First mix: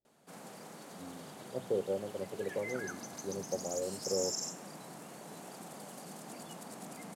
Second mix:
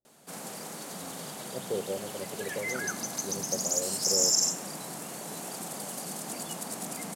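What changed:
background +7.0 dB; master: add high shelf 4100 Hz +9 dB

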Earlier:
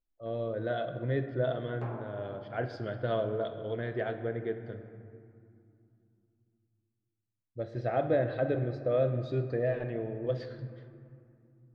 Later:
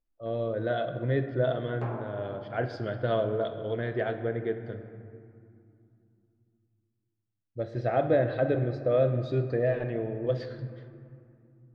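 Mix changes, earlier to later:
speech +3.5 dB; background +4.5 dB

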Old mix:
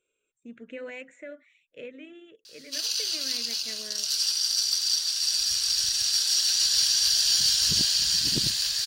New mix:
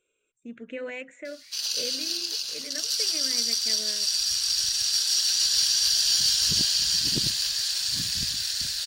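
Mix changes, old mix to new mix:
speech +3.5 dB; background: entry -1.20 s

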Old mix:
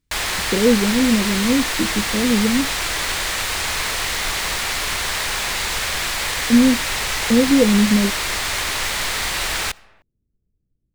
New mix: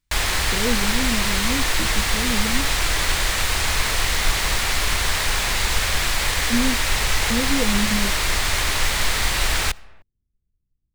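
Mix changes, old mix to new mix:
speech -11.5 dB; master: add low shelf 110 Hz +11.5 dB

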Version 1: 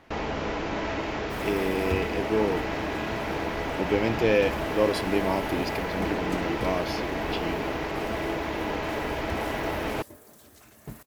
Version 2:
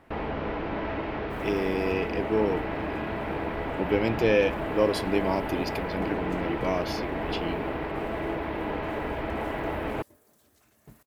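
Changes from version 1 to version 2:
first sound: add air absorption 350 m; second sound -11.0 dB

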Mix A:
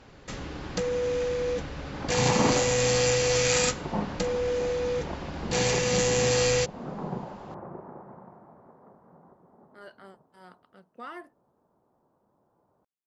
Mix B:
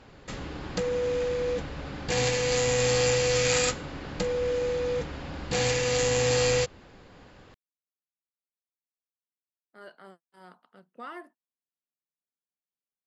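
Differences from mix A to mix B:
second sound: muted; master: add bell 5900 Hz -5 dB 0.23 oct

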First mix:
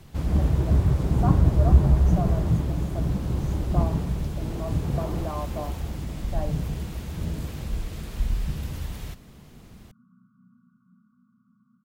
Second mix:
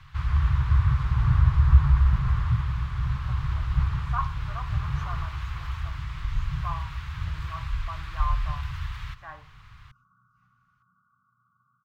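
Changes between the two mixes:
speech: entry +2.90 s; master: add EQ curve 130 Hz 0 dB, 220 Hz -26 dB, 660 Hz -18 dB, 1100 Hz +9 dB, 1600 Hz +7 dB, 3900 Hz 0 dB, 9800 Hz -17 dB

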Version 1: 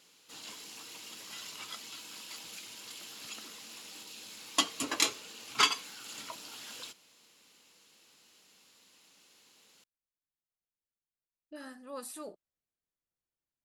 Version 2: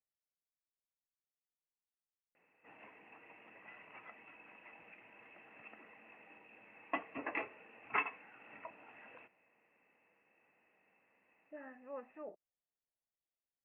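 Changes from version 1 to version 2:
background: entry +2.35 s; master: add rippled Chebyshev low-pass 2700 Hz, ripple 9 dB

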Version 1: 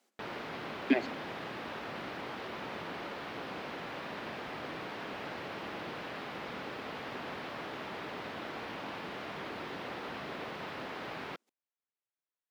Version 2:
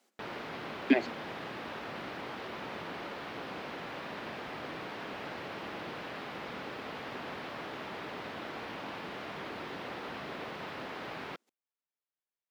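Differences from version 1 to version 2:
speech +4.0 dB; reverb: off

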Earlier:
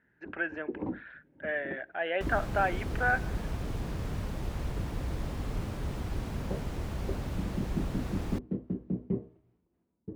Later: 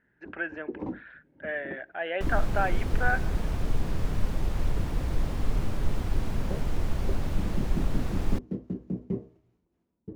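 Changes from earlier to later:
first sound: remove air absorption 270 m; second sound +3.0 dB; master: remove HPF 42 Hz

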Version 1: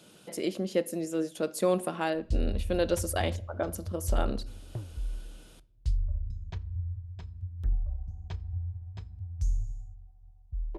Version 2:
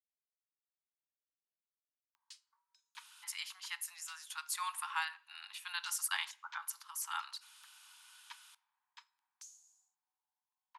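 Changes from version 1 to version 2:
speech: entry +2.95 s; master: add steep high-pass 890 Hz 96 dB/oct

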